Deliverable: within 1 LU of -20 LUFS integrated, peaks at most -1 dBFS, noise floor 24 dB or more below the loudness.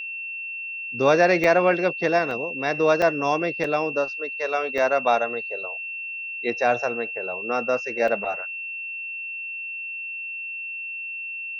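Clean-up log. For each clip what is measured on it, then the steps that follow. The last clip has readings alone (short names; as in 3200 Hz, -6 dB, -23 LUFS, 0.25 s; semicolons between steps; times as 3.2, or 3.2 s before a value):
dropouts 6; longest dropout 3.2 ms; steady tone 2700 Hz; tone level -30 dBFS; loudness -24.0 LUFS; peak -5.5 dBFS; loudness target -20.0 LUFS
-> interpolate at 1.44/2.31/3.02/3.64/4.78/8.08, 3.2 ms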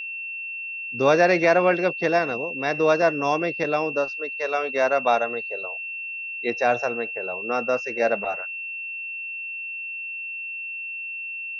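dropouts 0; steady tone 2700 Hz; tone level -30 dBFS
-> notch 2700 Hz, Q 30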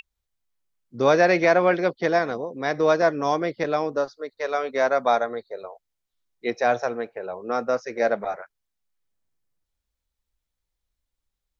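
steady tone none; loudness -23.5 LUFS; peak -6.0 dBFS; loudness target -20.0 LUFS
-> gain +3.5 dB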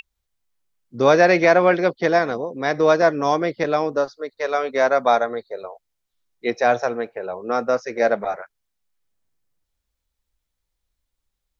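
loudness -20.0 LUFS; peak -2.5 dBFS; noise floor -79 dBFS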